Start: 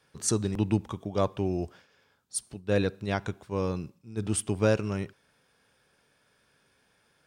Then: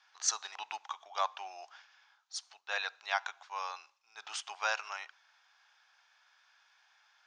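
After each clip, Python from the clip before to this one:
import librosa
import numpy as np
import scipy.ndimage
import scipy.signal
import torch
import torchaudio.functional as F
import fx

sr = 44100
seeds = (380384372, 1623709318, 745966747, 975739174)

y = scipy.signal.sosfilt(scipy.signal.cheby1(4, 1.0, [770.0, 6500.0], 'bandpass', fs=sr, output='sos'), x)
y = F.gain(torch.from_numpy(y), 2.5).numpy()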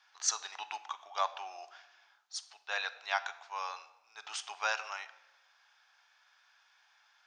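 y = fx.room_shoebox(x, sr, seeds[0], volume_m3=510.0, walls='mixed', distance_m=0.32)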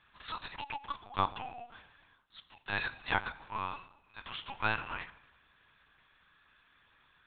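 y = fx.lpc_vocoder(x, sr, seeds[1], excitation='pitch_kept', order=8)
y = F.gain(torch.from_numpy(y), 1.5).numpy()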